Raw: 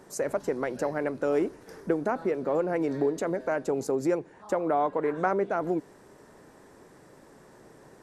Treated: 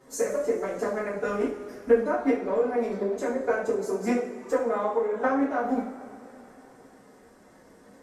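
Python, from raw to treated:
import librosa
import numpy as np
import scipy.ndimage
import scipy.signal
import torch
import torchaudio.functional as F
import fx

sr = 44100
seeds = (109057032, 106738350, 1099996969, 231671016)

y = fx.transient(x, sr, attack_db=7, sustain_db=0)
y = fx.pitch_keep_formants(y, sr, semitones=6.0)
y = fx.rev_double_slope(y, sr, seeds[0], early_s=0.45, late_s=3.4, knee_db=-19, drr_db=-7.5)
y = y * librosa.db_to_amplitude(-8.5)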